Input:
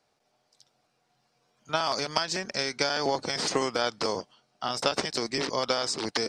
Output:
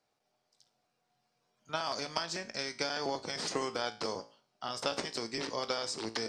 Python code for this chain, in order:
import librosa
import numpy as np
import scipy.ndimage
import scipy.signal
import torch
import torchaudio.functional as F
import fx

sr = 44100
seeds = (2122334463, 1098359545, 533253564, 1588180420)

y = fx.comb_fb(x, sr, f0_hz=56.0, decay_s=0.41, harmonics='all', damping=0.0, mix_pct=60)
y = y * 10.0 ** (-2.5 / 20.0)